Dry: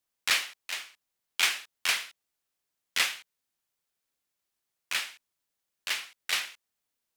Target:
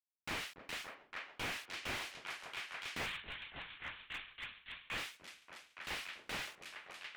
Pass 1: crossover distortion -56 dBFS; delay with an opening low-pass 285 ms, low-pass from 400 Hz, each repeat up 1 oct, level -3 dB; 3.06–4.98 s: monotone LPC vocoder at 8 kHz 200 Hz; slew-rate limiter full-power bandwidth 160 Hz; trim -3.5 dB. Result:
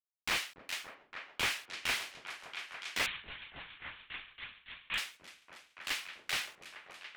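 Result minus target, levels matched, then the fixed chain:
slew-rate limiter: distortion -8 dB
crossover distortion -56 dBFS; delay with an opening low-pass 285 ms, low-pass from 400 Hz, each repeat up 1 oct, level -3 dB; 3.06–4.98 s: monotone LPC vocoder at 8 kHz 200 Hz; slew-rate limiter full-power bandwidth 41.5 Hz; trim -3.5 dB

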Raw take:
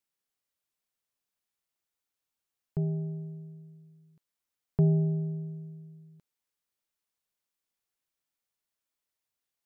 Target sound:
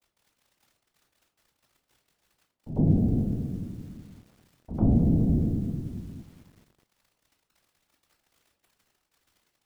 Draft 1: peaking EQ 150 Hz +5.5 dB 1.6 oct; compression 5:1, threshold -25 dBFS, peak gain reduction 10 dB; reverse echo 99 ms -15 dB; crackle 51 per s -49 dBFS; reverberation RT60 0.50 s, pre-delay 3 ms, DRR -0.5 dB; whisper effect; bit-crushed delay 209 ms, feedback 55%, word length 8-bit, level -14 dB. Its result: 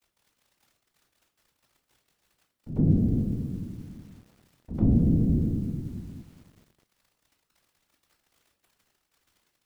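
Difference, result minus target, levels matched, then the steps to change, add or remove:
1 kHz band -7.5 dB
add first: resonant low-pass 750 Hz, resonance Q 3.4

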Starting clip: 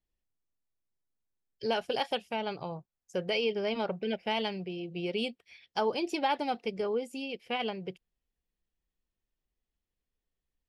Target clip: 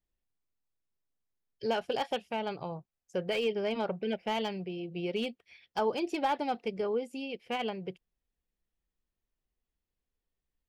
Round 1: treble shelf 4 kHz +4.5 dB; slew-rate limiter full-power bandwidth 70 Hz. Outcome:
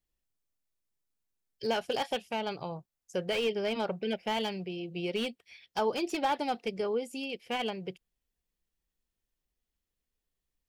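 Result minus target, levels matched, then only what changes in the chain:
8 kHz band +5.5 dB
change: treble shelf 4 kHz -7 dB

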